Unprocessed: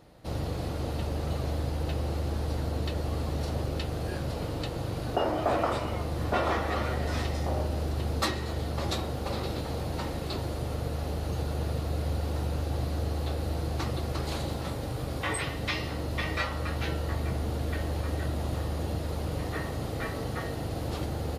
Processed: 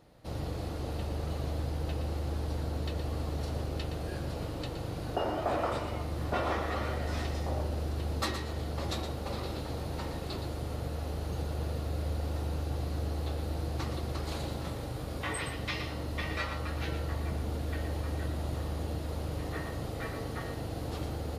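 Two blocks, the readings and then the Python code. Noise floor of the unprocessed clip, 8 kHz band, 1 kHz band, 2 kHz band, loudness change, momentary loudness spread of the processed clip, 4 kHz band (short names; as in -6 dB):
-35 dBFS, -4.0 dB, -4.0 dB, -4.0 dB, -3.5 dB, 4 LU, -4.0 dB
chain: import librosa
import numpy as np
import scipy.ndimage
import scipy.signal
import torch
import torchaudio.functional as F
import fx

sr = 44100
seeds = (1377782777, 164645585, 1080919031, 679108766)

p1 = x + fx.echo_single(x, sr, ms=118, db=-8.5, dry=0)
y = F.gain(torch.from_numpy(p1), -4.5).numpy()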